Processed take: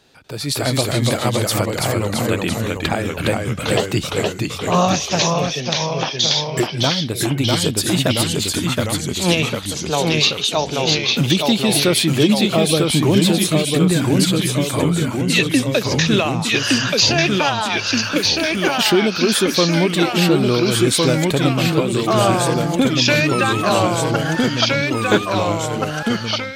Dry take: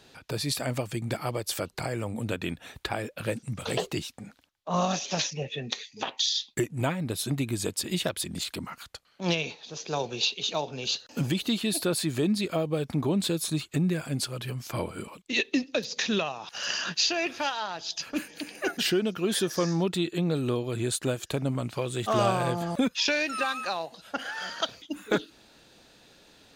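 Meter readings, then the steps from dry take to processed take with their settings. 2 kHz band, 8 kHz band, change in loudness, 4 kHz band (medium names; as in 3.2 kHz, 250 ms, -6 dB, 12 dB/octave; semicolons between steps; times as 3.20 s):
+12.5 dB, +12.0 dB, +12.0 dB, +12.5 dB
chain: ever faster or slower copies 243 ms, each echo -1 st, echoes 3; level rider gain up to 11.5 dB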